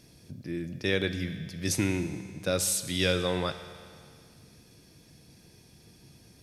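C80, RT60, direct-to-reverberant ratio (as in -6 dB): 12.0 dB, 2.2 s, 9.5 dB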